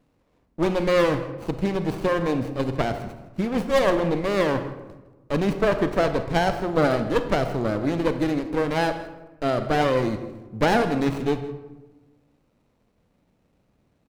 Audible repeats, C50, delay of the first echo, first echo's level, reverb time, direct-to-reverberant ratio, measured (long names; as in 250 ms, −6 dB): 1, 9.5 dB, 162 ms, −18.0 dB, 1.2 s, 8.5 dB